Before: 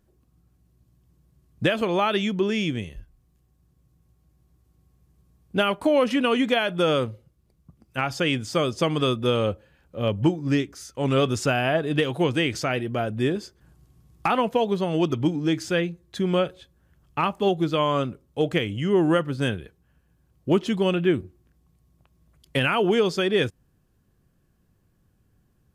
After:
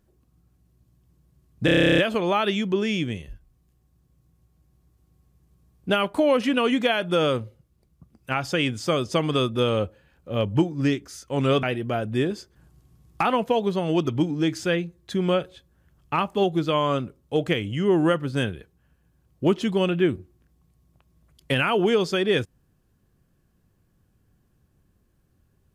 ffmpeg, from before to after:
-filter_complex "[0:a]asplit=13[s0][s1][s2][s3][s4][s5][s6][s7][s8][s9][s10][s11][s12];[s0]atrim=end=1.682[s13];[s1]atrim=start=1.648:end=1.682[s14];[s2]atrim=start=1.648:end=1.682[s15];[s3]atrim=start=1.648:end=1.682[s16];[s4]atrim=start=1.648:end=1.682[s17];[s5]atrim=start=1.648:end=1.682[s18];[s6]atrim=start=1.648:end=1.682[s19];[s7]atrim=start=1.648:end=1.682[s20];[s8]atrim=start=1.648:end=1.682[s21];[s9]atrim=start=1.648:end=1.682[s22];[s10]atrim=start=1.648:end=1.682[s23];[s11]atrim=start=1.648:end=11.302[s24];[s12]atrim=start=12.678[s25];[s13][s14]acrossfade=d=0.004:c1=hsin:c2=hsin[s26];[s26][s15]acrossfade=d=0.004:c1=hsin:c2=hsin[s27];[s27][s16]acrossfade=d=0.004:c1=hsin:c2=hsin[s28];[s28][s17]acrossfade=d=0.004:c1=hsin:c2=hsin[s29];[s29][s18]acrossfade=d=0.004:c1=hsin:c2=hsin[s30];[s30][s19]acrossfade=d=0.004:c1=hsin:c2=hsin[s31];[s31][s20]acrossfade=d=0.004:c1=hsin:c2=hsin[s32];[s32][s21]acrossfade=d=0.004:c1=hsin:c2=hsin[s33];[s33][s22]acrossfade=d=0.004:c1=hsin:c2=hsin[s34];[s34][s23]acrossfade=d=0.004:c1=hsin:c2=hsin[s35];[s35][s24]acrossfade=d=0.004:c1=hsin:c2=hsin[s36];[s36][s25]acrossfade=d=0.004:c1=hsin:c2=hsin"

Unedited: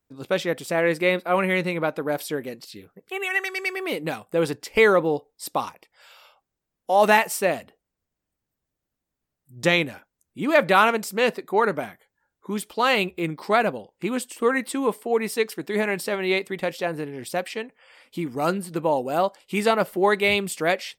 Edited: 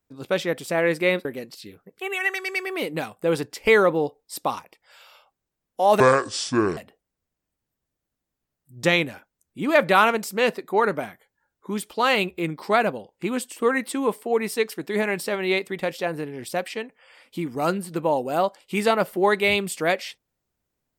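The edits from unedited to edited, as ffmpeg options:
-filter_complex "[0:a]asplit=4[s0][s1][s2][s3];[s0]atrim=end=1.252[s4];[s1]atrim=start=2.348:end=7.104[s5];[s2]atrim=start=7.1:end=7.57,asetpts=PTS-STARTPTS,asetrate=26901,aresample=44100[s6];[s3]atrim=start=7.566[s7];[s4][s5]acrossfade=d=0.004:c1=hsin:c2=hsin[s8];[s8][s6]acrossfade=d=0.004:c1=hsin:c2=hsin[s9];[s9][s7]acrossfade=d=0.004:c1=hsin:c2=hsin"

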